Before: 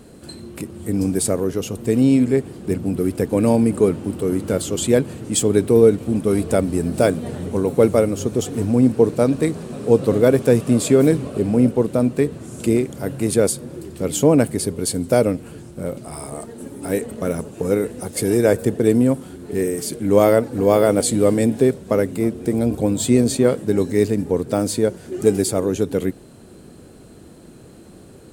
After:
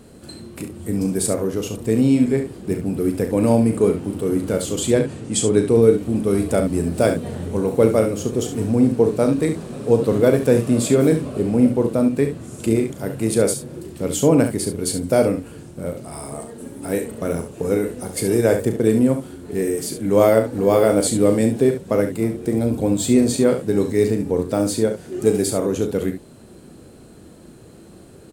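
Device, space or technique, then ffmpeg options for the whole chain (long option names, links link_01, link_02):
slapback doubling: -filter_complex "[0:a]asplit=3[link_01][link_02][link_03];[link_02]adelay=36,volume=-8.5dB[link_04];[link_03]adelay=69,volume=-9dB[link_05];[link_01][link_04][link_05]amix=inputs=3:normalize=0,asettb=1/sr,asplit=3[link_06][link_07][link_08];[link_06]atrim=end=4.914[link_09];[link_07]atrim=start=4.91:end=5.82,asetpts=PTS-STARTPTS,afade=type=in:duration=0.004:curve=qsin,afade=type=out:start_time=0.906:duration=0.004:curve=qsin,lowpass=frequency=10000:width=0.5412,lowpass=frequency=10000:width=1.3066[link_10];[link_08]atrim=start=5.816[link_11];[link_09][link_10]acrossfade=duration=0.004:curve1=hsin:curve2=qsin[link_12];[link_12][link_11]acrossfade=duration=0.004:curve1=qsin:curve2=hsin,volume=-1.5dB"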